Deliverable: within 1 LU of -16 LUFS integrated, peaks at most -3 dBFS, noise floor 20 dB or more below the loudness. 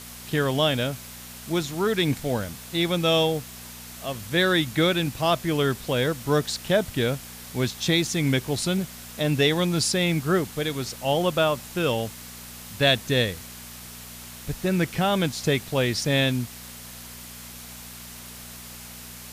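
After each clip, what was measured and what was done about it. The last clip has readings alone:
hum 60 Hz; harmonics up to 240 Hz; hum level -47 dBFS; noise floor -41 dBFS; noise floor target -45 dBFS; loudness -24.5 LUFS; peak -6.5 dBFS; loudness target -16.0 LUFS
-> de-hum 60 Hz, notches 4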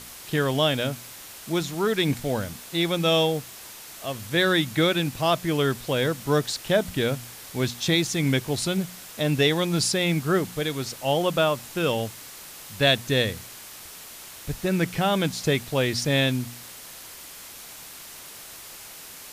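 hum none; noise floor -43 dBFS; noise floor target -45 dBFS
-> denoiser 6 dB, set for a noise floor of -43 dBFS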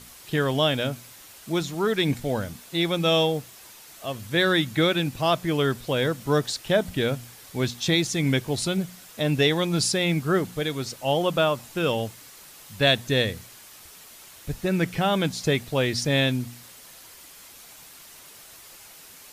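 noise floor -47 dBFS; loudness -24.5 LUFS; peak -6.5 dBFS; loudness target -16.0 LUFS
-> gain +8.5 dB; limiter -3 dBFS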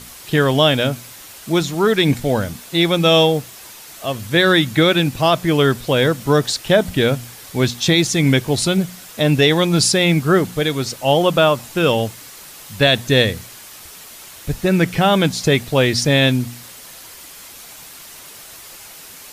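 loudness -16.5 LUFS; peak -3.0 dBFS; noise floor -39 dBFS

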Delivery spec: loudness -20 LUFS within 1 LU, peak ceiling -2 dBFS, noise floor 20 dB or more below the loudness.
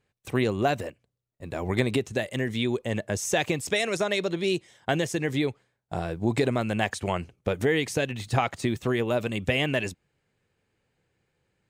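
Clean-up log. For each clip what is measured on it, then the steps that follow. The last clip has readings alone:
loudness -27.5 LUFS; peak -8.0 dBFS; loudness target -20.0 LUFS
-> gain +7.5 dB; limiter -2 dBFS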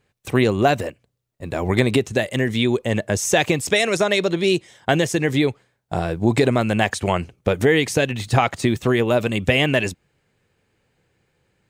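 loudness -20.0 LUFS; peak -2.0 dBFS; noise floor -71 dBFS

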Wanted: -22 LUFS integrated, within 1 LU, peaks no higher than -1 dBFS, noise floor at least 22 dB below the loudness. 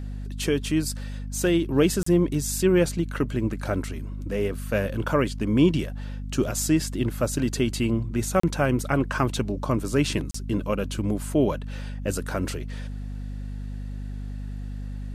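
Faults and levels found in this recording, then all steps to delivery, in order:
dropouts 3; longest dropout 34 ms; hum 50 Hz; harmonics up to 250 Hz; hum level -31 dBFS; loudness -25.5 LUFS; peak -8.0 dBFS; loudness target -22.0 LUFS
-> interpolate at 2.03/8.4/10.31, 34 ms; de-hum 50 Hz, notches 5; gain +3.5 dB

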